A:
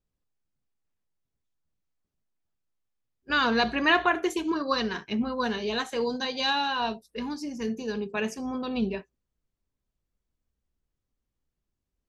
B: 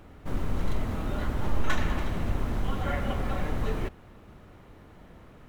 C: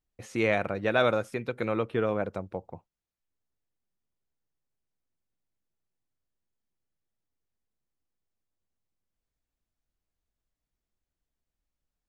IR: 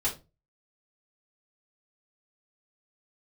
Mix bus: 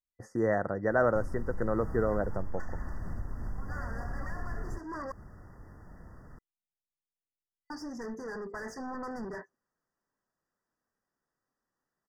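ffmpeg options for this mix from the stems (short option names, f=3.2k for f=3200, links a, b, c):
-filter_complex "[0:a]highpass=110,lowshelf=f=150:g=-9.5,asplit=2[a][b];[b]highpass=f=720:p=1,volume=37dB,asoftclip=type=tanh:threshold=-8dB[c];[a][c]amix=inputs=2:normalize=0,lowpass=f=1.8k:p=1,volume=-6dB,adelay=400,volume=-14.5dB,asplit=3[d][e][f];[d]atrim=end=5.12,asetpts=PTS-STARTPTS,afade=t=out:st=5.116:d=0.004:c=hsin[g];[e]atrim=start=5.12:end=7.7,asetpts=PTS-STARTPTS,volume=0[h];[f]atrim=start=7.7,asetpts=PTS-STARTPTS,afade=t=in:d=0.004:c=hsin[i];[g][h][i]concat=n=3:v=0:a=1[j];[1:a]acontrast=76,adelay=900,volume=-4dB[k];[2:a]agate=range=-16dB:threshold=-47dB:ratio=16:detection=peak,volume=-1dB[l];[j][k]amix=inputs=2:normalize=0,equalizer=f=450:t=o:w=2.6:g=-7.5,acompressor=threshold=-35dB:ratio=3,volume=0dB[m];[l][m]amix=inputs=2:normalize=0,afftfilt=real='re*(1-between(b*sr/4096,2000,4600))':imag='im*(1-between(b*sr/4096,2000,4600))':win_size=4096:overlap=0.75,highshelf=f=3.1k:g=-8"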